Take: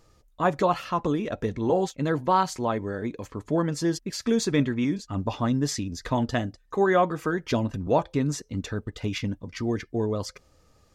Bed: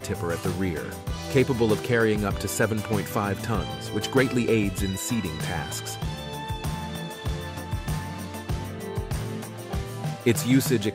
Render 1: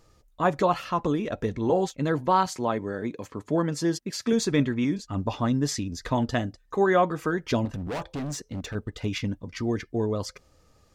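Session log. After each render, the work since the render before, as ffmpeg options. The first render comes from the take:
-filter_complex "[0:a]asettb=1/sr,asplit=3[s0][s1][s2];[s0]atrim=end=2.464[s3];[s1]atrim=start=2.46:end=4.33,asetpts=PTS-STARTPTS,afade=t=in:d=0.004:c=qsin,afade=t=out:st=1.866:d=0.004:c=qsin,highpass=110[s4];[s2]atrim=start=4.326[s5];[s3][s4]acrossfade=d=0.004:c1=hsin:c2=qsin[s6];[s6][s5]acrossfade=d=0.004:c1=qsin:c2=hsin,asettb=1/sr,asplit=3[s7][s8][s9];[s7]atrim=end=7.654[s10];[s8]atrim=start=7.65:end=8.75,asetpts=PTS-STARTPTS,afade=t=in:d=0.004:c=qsin,afade=t=out:st=1.096:d=0.004:c=qsin,volume=28.2,asoftclip=hard,volume=0.0355[s11];[s9]atrim=start=8.746[s12];[s10][s11]acrossfade=d=0.004:c1=hsin:c2=qsin[s13];[s13][s12]acrossfade=d=0.004:c1=qsin:c2=hsin"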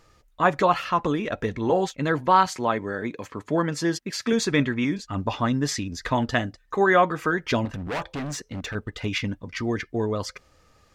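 -af "equalizer=f=1900:w=0.61:g=7.5"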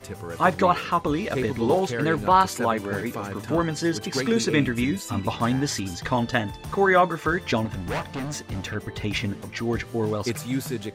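-filter_complex "[1:a]volume=0.447[s0];[0:a][s0]amix=inputs=2:normalize=0"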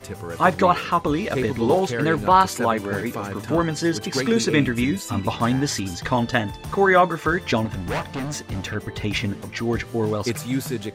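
-af "volume=1.33"

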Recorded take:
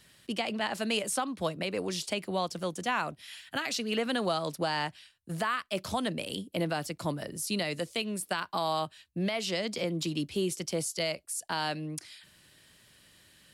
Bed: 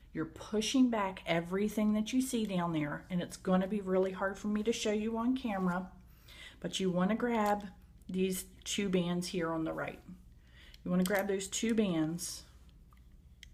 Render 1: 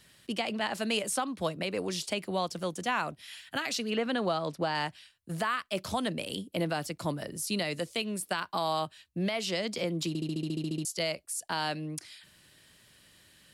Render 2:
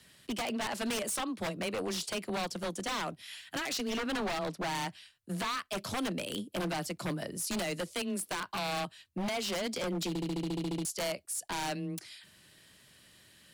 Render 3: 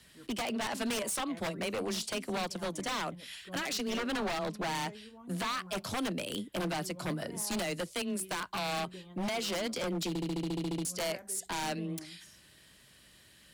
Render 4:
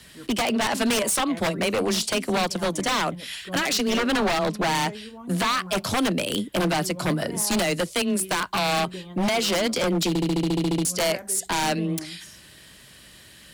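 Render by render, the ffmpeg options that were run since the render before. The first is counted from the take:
-filter_complex "[0:a]asettb=1/sr,asplit=3[s0][s1][s2];[s0]atrim=end=3.904[s3];[s1]atrim=start=3.9:end=4.75,asetpts=PTS-STARTPTS,afade=t=in:d=0.004:c=qsin,afade=t=out:st=0.846:d=0.004:c=qsin,aemphasis=mode=reproduction:type=50fm[s4];[s2]atrim=start=4.746[s5];[s3][s4]acrossfade=d=0.004:c1=hsin:c2=qsin[s6];[s6][s5]acrossfade=d=0.004:c1=qsin:c2=hsin,asplit=12[s7][s8][s9][s10][s11][s12][s13][s14][s15][s16][s17][s18];[s7]atrim=end=10.152[s19];[s8]atrim=start=10.078:end=10.152[s20];[s9]atrim=start=10.078:end=10.152[s21];[s10]atrim=start=10.078:end=10.152[s22];[s11]atrim=start=10.078:end=10.152[s23];[s12]atrim=start=10.078:end=10.152[s24];[s13]atrim=start=10.078:end=10.152[s25];[s14]atrim=start=10.078:end=10.152[s26];[s15]atrim=start=10.078:end=10.152[s27];[s16]atrim=start=10.078:end=10.152[s28];[s17]atrim=start=10.078:end=10.152[s29];[s18]atrim=start=10.848[s30];[s19][s20]acrossfade=d=0.004:c1=hsin:c2=hsin[s31];[s31][s21]acrossfade=d=0.004:c1=hsin:c2=hsin[s32];[s32][s22]acrossfade=d=0.004:c1=hsin:c2=hsin[s33];[s33][s23]acrossfade=d=0.004:c1=hsin:c2=hsin[s34];[s34][s24]acrossfade=d=0.004:c1=hsin:c2=hsin[s35];[s35][s25]acrossfade=d=0.004:c1=hsin:c2=hsin[s36];[s36][s26]acrossfade=d=0.004:c1=hsin:c2=hsin[s37];[s37][s27]acrossfade=d=0.004:c1=hsin:c2=hsin[s38];[s38][s28]acrossfade=d=0.004:c1=hsin:c2=hsin[s39];[s39][s29]acrossfade=d=0.004:c1=hsin:c2=hsin[s40];[s40][s30]acrossfade=d=0.004:c1=hsin:c2=hsin"
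-af "afreqshift=14,aeval=exprs='0.0376*(abs(mod(val(0)/0.0376+3,4)-2)-1)':c=same"
-filter_complex "[1:a]volume=0.133[s0];[0:a][s0]amix=inputs=2:normalize=0"
-af "volume=3.55"

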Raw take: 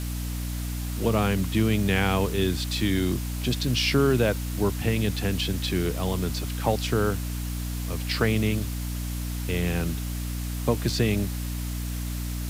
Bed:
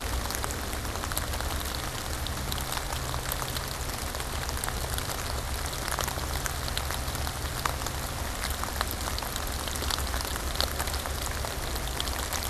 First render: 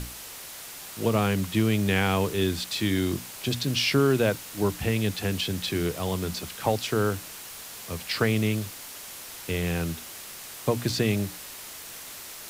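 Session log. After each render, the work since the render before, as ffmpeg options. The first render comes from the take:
-af "bandreject=f=60:t=h:w=6,bandreject=f=120:t=h:w=6,bandreject=f=180:t=h:w=6,bandreject=f=240:t=h:w=6,bandreject=f=300:t=h:w=6"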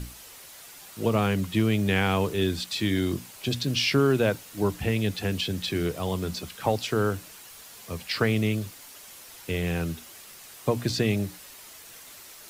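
-af "afftdn=nr=7:nf=-42"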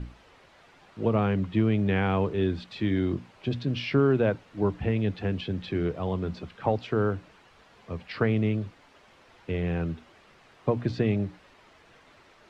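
-af "lowpass=3200,highshelf=f=2200:g=-10"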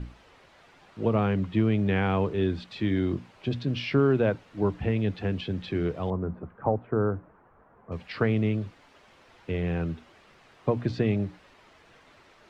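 -filter_complex "[0:a]asettb=1/sr,asplit=3[s0][s1][s2];[s0]atrim=end=6.104[s3];[s1]atrim=start=6.1:end=7.92,asetpts=PTS-STARTPTS,afade=t=in:d=0.004:c=qsin,afade=t=out:st=1.816:d=0.004:c=qsin,lowpass=f=1400:w=0.5412,lowpass=f=1400:w=1.3066[s4];[s2]atrim=start=7.916[s5];[s3][s4]acrossfade=d=0.004:c1=hsin:c2=qsin[s6];[s6][s5]acrossfade=d=0.004:c1=qsin:c2=hsin"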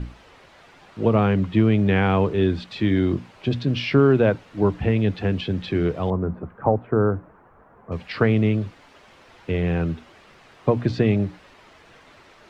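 -af "volume=2"

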